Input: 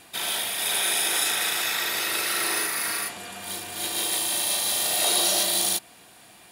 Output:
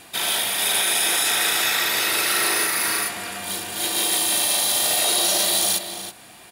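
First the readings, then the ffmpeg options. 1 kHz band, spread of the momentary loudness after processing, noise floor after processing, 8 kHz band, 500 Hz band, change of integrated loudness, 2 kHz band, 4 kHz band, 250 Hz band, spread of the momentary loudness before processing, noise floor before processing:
+4.5 dB, 10 LU, -46 dBFS, +4.0 dB, +4.0 dB, +4.0 dB, +5.0 dB, +4.0 dB, +4.5 dB, 9 LU, -51 dBFS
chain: -filter_complex "[0:a]asplit=2[a][b];[b]adelay=326.5,volume=-9dB,highshelf=f=4k:g=-7.35[c];[a][c]amix=inputs=2:normalize=0,alimiter=limit=-15.5dB:level=0:latency=1:release=19,volume=5dB"

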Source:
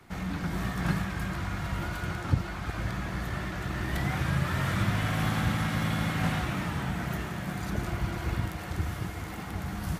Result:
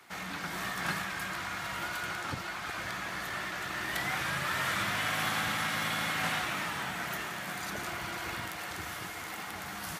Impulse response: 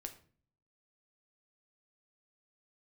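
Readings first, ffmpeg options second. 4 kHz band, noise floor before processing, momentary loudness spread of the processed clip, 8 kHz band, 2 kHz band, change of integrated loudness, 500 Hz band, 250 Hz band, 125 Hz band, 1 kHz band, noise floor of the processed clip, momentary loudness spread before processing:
+4.0 dB, -38 dBFS, 8 LU, +4.5 dB, +3.0 dB, -2.5 dB, -3.5 dB, -10.5 dB, -15.0 dB, +1.0 dB, -41 dBFS, 7 LU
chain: -af "highpass=f=1.2k:p=1,volume=4.5dB"

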